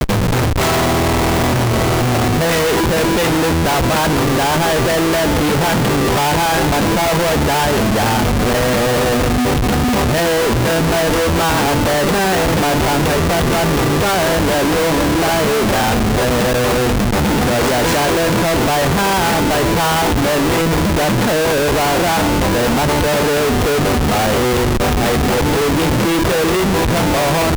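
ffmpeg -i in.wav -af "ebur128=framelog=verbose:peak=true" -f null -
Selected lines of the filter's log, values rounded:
Integrated loudness:
  I:         -14.6 LUFS
  Threshold: -24.6 LUFS
Loudness range:
  LRA:         0.4 LU
  Threshold: -34.6 LUFS
  LRA low:   -14.8 LUFS
  LRA high:  -14.4 LUFS
True peak:
  Peak:       -7.5 dBFS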